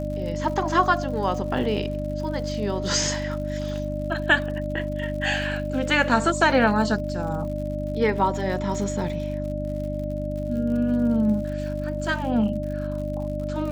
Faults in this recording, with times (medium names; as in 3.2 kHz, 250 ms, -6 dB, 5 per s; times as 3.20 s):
crackle 97 per s -35 dBFS
hum 50 Hz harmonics 6 -30 dBFS
whine 600 Hz -30 dBFS